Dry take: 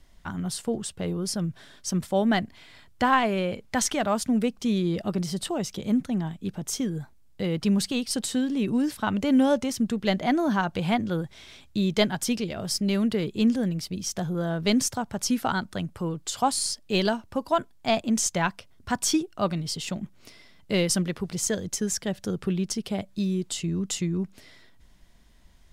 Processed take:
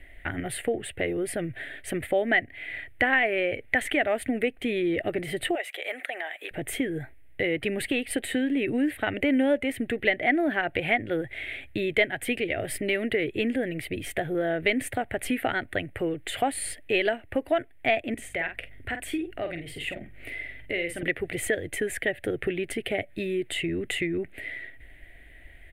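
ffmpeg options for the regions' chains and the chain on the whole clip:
-filter_complex "[0:a]asettb=1/sr,asplit=3[s0][s1][s2];[s0]atrim=end=5.554[s3];[s1]atrim=start=5.55:end=6.51,asetpts=PTS-STARTPTS,afade=t=in:d=0.004:c=qsin,afade=t=out:st=0.956:d=0.004:c=qsin,highpass=f=620:w=0.5412,highpass=f=620:w=1.3066,acompressor=mode=upward:threshold=0.0126:ratio=2.5:attack=3.2:release=140:knee=2.83:detection=peak[s4];[s2]atrim=start=6.506[s5];[s3][s4]acrossfade=d=0.004:c1=hsin:c2=qsin[s6];[s6][s5]acrossfade=d=0.004:c1=qsin:c2=hsin,asettb=1/sr,asplit=3[s7][s8][s9];[s7]atrim=end=18.144[s10];[s8]atrim=start=18.14:end=21.03,asetpts=PTS-STARTPTS,afade=t=in:d=0.004:c=qsin,afade=t=out:st=2.886:d=0.004:c=qsin,acompressor=threshold=0.00794:ratio=2:attack=3.2:release=140:knee=1:detection=peak,aeval=exprs='val(0)+0.00141*(sin(2*PI*50*n/s)+sin(2*PI*2*50*n/s)/2+sin(2*PI*3*50*n/s)/3+sin(2*PI*4*50*n/s)/4+sin(2*PI*5*50*n/s)/5)':c=same,asplit=2[s11][s12];[s12]adelay=47,volume=0.398[s13];[s11][s13]amix=inputs=2:normalize=0,atrim=end_sample=127449[s14];[s9]atrim=start=21.026[s15];[s10][s14]acrossfade=d=0.004:c1=hsin:c2=qsin[s16];[s16][s15]acrossfade=d=0.004:c1=qsin:c2=hsin,firequalizer=gain_entry='entry(120,0);entry(190,-17);entry(280,2);entry(710,3);entry(1000,-16);entry(1900,15);entry(5500,-30);entry(8900,-5)':delay=0.05:min_phase=1,acompressor=threshold=0.02:ratio=2,volume=2.11"

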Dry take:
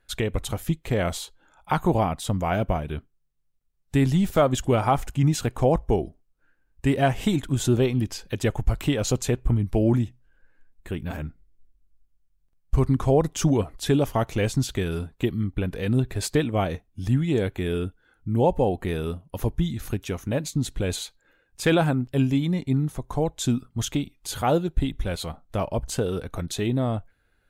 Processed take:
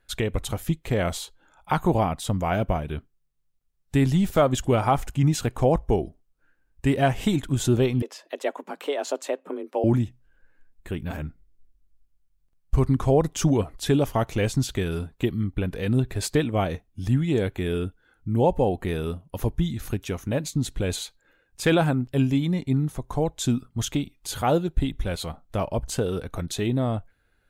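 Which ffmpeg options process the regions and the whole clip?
-filter_complex "[0:a]asettb=1/sr,asplit=3[s0][s1][s2];[s0]atrim=end=8.024[s3];[s1]atrim=start=8.02:end=9.84,asetpts=PTS-STARTPTS,afade=t=in:d=0.004:c=qsin,afade=t=out:st=1.816:d=0.004:c=qsin,highpass=290,highshelf=f=3100:g=-9.5,afreqshift=140[s4];[s2]atrim=start=9.836[s5];[s3][s4]acrossfade=d=0.004:c1=hsin:c2=qsin[s6];[s6][s5]acrossfade=d=0.004:c1=qsin:c2=hsin"

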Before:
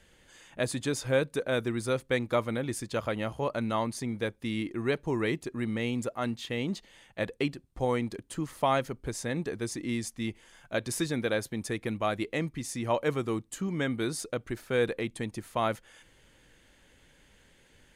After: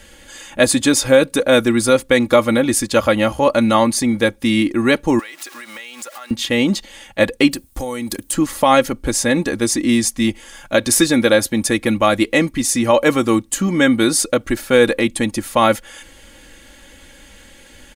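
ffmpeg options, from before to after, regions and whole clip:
-filter_complex "[0:a]asettb=1/sr,asplit=3[s0][s1][s2];[s0]atrim=end=5.194[s3];[s1]atrim=start=5.19:end=6.31,asetpts=PTS-STARTPTS,afade=t=in:d=0.004:c=qsin,afade=t=out:st=1.116:d=0.004:c=qsin,aeval=exprs='val(0)+0.5*0.00668*sgn(val(0))':c=same,highpass=1000,acompressor=threshold=0.00501:ratio=12:attack=3.2:release=140:knee=1:detection=peak[s4];[s2]atrim=start=6.306[s5];[s3][s4]acrossfade=d=0.004:c1=hsin:c2=qsin[s6];[s6][s5]acrossfade=d=0.004:c1=qsin:c2=hsin,asettb=1/sr,asplit=3[s7][s8][s9];[s7]atrim=end=7.514[s10];[s8]atrim=start=7.51:end=8.33,asetpts=PTS-STARTPTS,afade=t=in:d=0.004:c=qsin,afade=t=out:st=0.816:d=0.004:c=qsin,aemphasis=mode=production:type=50fm,acompressor=threshold=0.0158:ratio=12:attack=3.2:release=140:knee=1:detection=peak[s11];[s9]atrim=start=8.326[s12];[s10][s11]acrossfade=d=0.004:c1=hsin:c2=qsin[s13];[s13][s12]acrossfade=d=0.004:c1=qsin:c2=hsin,highshelf=f=4700:g=5.5,aecho=1:1:3.6:0.61,alimiter=level_in=5.96:limit=0.891:release=50:level=0:latency=1,volume=0.891"

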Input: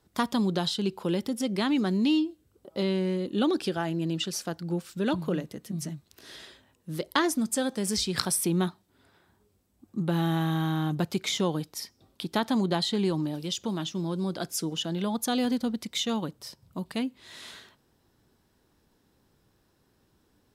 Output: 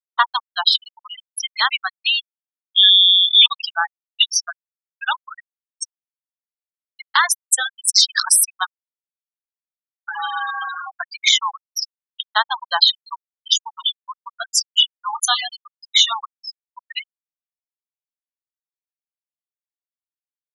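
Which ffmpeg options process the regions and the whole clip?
-filter_complex "[0:a]asettb=1/sr,asplit=3[s0][s1][s2];[s0]atrim=end=2.754[s3];[s1]atrim=start=2.75:end=3.46,asetpts=PTS-STARTPTS,afade=t=in:d=0.004:c=qsin,afade=t=out:st=0.706:d=0.004:c=qsin,equalizer=f=180:w=6.7:g=-9.5,lowpass=f=3200:t=q:w=0.5098,lowpass=f=3200:t=q:w=0.6013,lowpass=f=3200:t=q:w=0.9,lowpass=f=3200:t=q:w=2.563,afreqshift=-3800[s4];[s2]atrim=start=3.456[s5];[s3][s4]acrossfade=d=0.004:c1=hsin:c2=qsin[s6];[s6][s5]acrossfade=d=0.004:c1=qsin:c2=hsin,asettb=1/sr,asplit=3[s7][s8][s9];[s7]atrim=end=13.764[s10];[s8]atrim=start=13.76:end=16.15,asetpts=PTS-STARTPTS,afade=t=in:d=0.004:c=qsin,afade=t=out:st=2.386:d=0.004:c=qsin,lowpass=9600,adynamicequalizer=threshold=0.00158:dfrequency=1600:dqfactor=5.1:tfrequency=1600:tqfactor=5.1:attack=5:release=100:ratio=0.375:range=2.5:mode=cutabove:tftype=bell,asplit=2[s11][s12];[s12]adelay=27,volume=0.501[s13];[s11][s13]amix=inputs=2:normalize=0,atrim=end_sample=105399[s14];[s9]atrim=start=16.146[s15];[s10][s14]acrossfade=d=0.004:c1=hsin:c2=qsin[s16];[s16][s15]acrossfade=d=0.004:c1=qsin:c2=hsin,highpass=f=1000:w=0.5412,highpass=f=1000:w=1.3066,afftfilt=real='re*gte(hypot(re,im),0.0447)':imag='im*gte(hypot(re,im),0.0447)':win_size=1024:overlap=0.75,alimiter=level_in=8.91:limit=0.891:release=50:level=0:latency=1,volume=0.891"

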